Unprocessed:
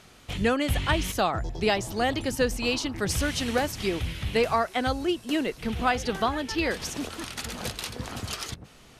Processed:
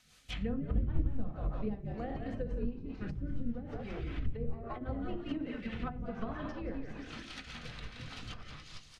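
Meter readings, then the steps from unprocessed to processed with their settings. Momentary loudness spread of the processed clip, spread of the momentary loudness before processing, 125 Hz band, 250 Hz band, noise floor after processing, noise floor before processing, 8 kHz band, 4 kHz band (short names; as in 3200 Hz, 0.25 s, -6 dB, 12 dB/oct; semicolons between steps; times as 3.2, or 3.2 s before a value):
10 LU, 9 LU, -6.0 dB, -9.0 dB, -55 dBFS, -52 dBFS, under -25 dB, -18.5 dB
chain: flange 0.44 Hz, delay 1 ms, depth 7.4 ms, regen -65%; passive tone stack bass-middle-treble 5-5-5; on a send: frequency-shifting echo 0.171 s, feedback 47%, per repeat -59 Hz, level -5 dB; on the sum: shoebox room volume 800 m³, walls furnished, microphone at 2 m; rotary speaker horn 5 Hz; treble ducked by the level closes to 310 Hz, closed at -38 dBFS; upward expander 1.5:1, over -58 dBFS; gain +14.5 dB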